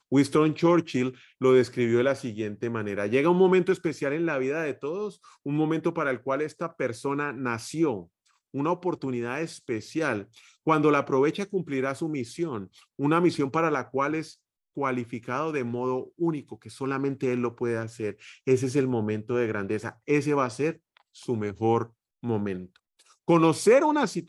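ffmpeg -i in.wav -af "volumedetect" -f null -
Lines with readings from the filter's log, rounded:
mean_volume: -26.5 dB
max_volume: -8.0 dB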